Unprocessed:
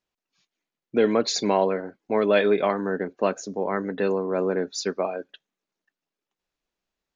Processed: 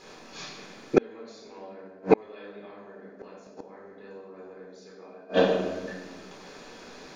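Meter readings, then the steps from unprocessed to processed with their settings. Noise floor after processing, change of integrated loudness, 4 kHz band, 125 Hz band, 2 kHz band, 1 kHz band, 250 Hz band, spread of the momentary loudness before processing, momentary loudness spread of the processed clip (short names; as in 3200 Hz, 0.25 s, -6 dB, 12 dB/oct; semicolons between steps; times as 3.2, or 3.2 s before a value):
-49 dBFS, -3.0 dB, -8.0 dB, -4.0 dB, -6.5 dB, -7.5 dB, -5.0 dB, 9 LU, 22 LU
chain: per-bin compression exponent 0.6; shoebox room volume 880 m³, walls mixed, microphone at 4 m; flipped gate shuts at -7 dBFS, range -37 dB; gain +3 dB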